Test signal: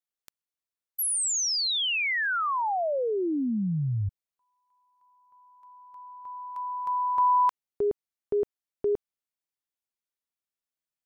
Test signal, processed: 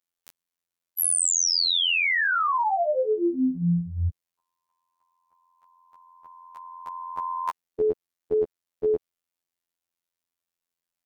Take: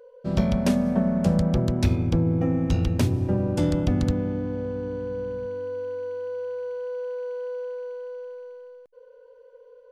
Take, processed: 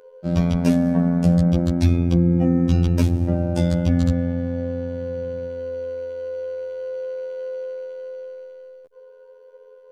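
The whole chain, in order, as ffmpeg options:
-af "afftfilt=real='hypot(re,im)*cos(PI*b)':imag='0':win_size=2048:overlap=0.75,acontrast=87"

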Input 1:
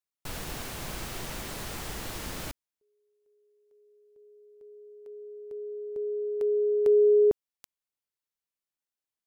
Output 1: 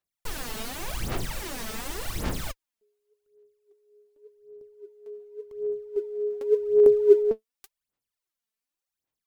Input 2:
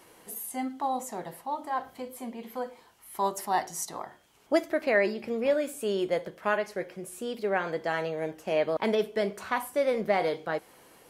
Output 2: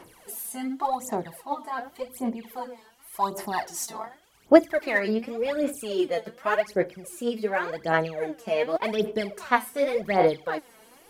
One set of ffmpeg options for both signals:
-af "aphaser=in_gain=1:out_gain=1:delay=4.6:decay=0.74:speed=0.88:type=sinusoidal,volume=-1dB"

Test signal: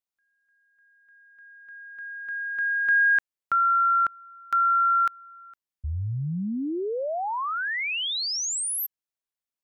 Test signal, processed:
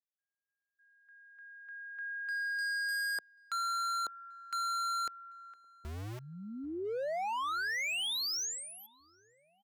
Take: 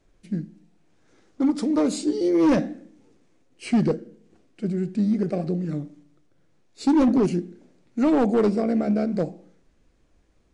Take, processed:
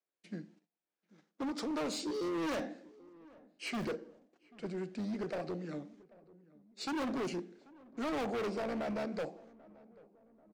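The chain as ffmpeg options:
-filter_complex "[0:a]acrossover=split=6500[a][b];[b]acompressor=threshold=-38dB:ratio=4:attack=1:release=60[c];[a][c]amix=inputs=2:normalize=0,acrossover=split=450 7000:gain=0.251 1 0.2[d][e][f];[d][e][f]amix=inputs=3:normalize=0,agate=range=-22dB:threshold=-60dB:ratio=3:release=50:detection=rms,acrossover=split=140[g][h];[g]acrusher=bits=6:mix=0:aa=0.000001[i];[i][h]amix=inputs=2:normalize=0,asoftclip=type=hard:threshold=-31dB,asplit=2[j][k];[k]adelay=788,lowpass=f=1.2k:p=1,volume=-22dB,asplit=2[l][m];[m]adelay=788,lowpass=f=1.2k:p=1,volume=0.54,asplit=2[n][o];[o]adelay=788,lowpass=f=1.2k:p=1,volume=0.54,asplit=2[p][q];[q]adelay=788,lowpass=f=1.2k:p=1,volume=0.54[r];[l][n][p][r]amix=inputs=4:normalize=0[s];[j][s]amix=inputs=2:normalize=0,volume=-2.5dB"

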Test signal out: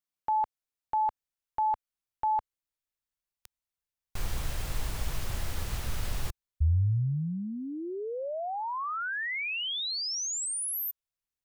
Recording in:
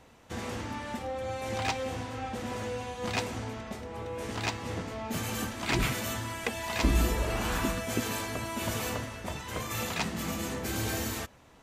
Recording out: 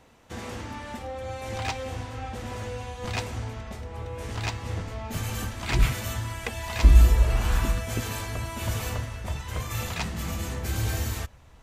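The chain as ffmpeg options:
-af "asubboost=boost=5.5:cutoff=100"

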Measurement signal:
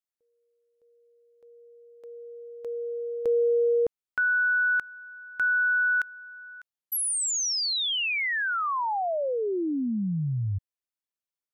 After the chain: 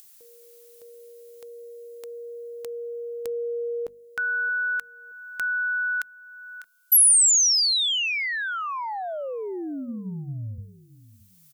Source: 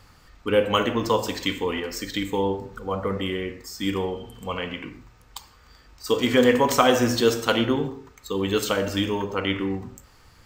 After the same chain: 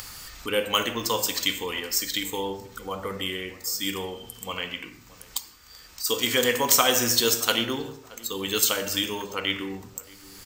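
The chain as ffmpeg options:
-filter_complex "[0:a]crystalizer=i=7:c=0,bandreject=f=50:t=h:w=6,bandreject=f=100:t=h:w=6,bandreject=f=150:t=h:w=6,bandreject=f=200:t=h:w=6,bandreject=f=250:t=h:w=6,acompressor=mode=upward:threshold=-19dB:ratio=2.5:attack=2.8:release=857:knee=2.83:detection=peak,asplit=2[a][b];[b]adelay=624,lowpass=f=1.2k:p=1,volume=-19dB,asplit=2[c][d];[d]adelay=624,lowpass=f=1.2k:p=1,volume=0.28[e];[c][e]amix=inputs=2:normalize=0[f];[a][f]amix=inputs=2:normalize=0,volume=-7.5dB"

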